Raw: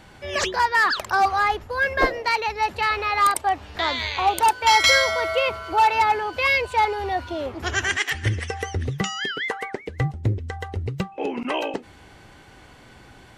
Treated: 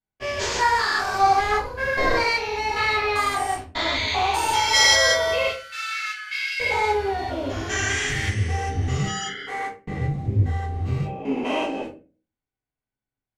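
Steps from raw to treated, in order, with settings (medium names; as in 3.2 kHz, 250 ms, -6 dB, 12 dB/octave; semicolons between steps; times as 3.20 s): spectrogram pixelated in time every 200 ms; gate -35 dBFS, range -47 dB; 5.47–6.60 s: rippled Chebyshev high-pass 1.3 kHz, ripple 3 dB; dynamic bell 6.4 kHz, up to +6 dB, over -45 dBFS, Q 0.77; reverberation RT60 0.35 s, pre-delay 4 ms, DRR -6.5 dB; trim -4.5 dB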